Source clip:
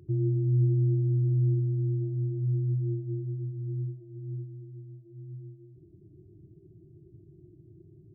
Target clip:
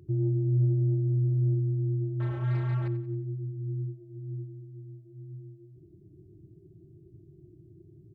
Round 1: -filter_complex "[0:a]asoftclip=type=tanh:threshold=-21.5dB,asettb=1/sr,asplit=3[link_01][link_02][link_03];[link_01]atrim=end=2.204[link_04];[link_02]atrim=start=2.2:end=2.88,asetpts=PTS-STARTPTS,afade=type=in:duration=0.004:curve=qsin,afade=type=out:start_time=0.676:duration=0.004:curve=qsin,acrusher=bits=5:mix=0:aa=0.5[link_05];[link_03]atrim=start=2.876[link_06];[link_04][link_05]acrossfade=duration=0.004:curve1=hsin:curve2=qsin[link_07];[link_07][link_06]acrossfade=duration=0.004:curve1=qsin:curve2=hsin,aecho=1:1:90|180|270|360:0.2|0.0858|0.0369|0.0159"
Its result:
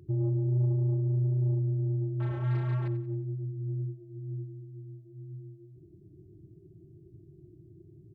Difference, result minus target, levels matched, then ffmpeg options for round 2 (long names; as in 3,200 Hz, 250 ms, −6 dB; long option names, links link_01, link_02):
soft clipping: distortion +13 dB
-filter_complex "[0:a]asoftclip=type=tanh:threshold=-13.5dB,asettb=1/sr,asplit=3[link_01][link_02][link_03];[link_01]atrim=end=2.204[link_04];[link_02]atrim=start=2.2:end=2.88,asetpts=PTS-STARTPTS,afade=type=in:duration=0.004:curve=qsin,afade=type=out:start_time=0.676:duration=0.004:curve=qsin,acrusher=bits=5:mix=0:aa=0.5[link_05];[link_03]atrim=start=2.876[link_06];[link_04][link_05]acrossfade=duration=0.004:curve1=hsin:curve2=qsin[link_07];[link_07][link_06]acrossfade=duration=0.004:curve1=qsin:curve2=hsin,aecho=1:1:90|180|270|360:0.2|0.0858|0.0369|0.0159"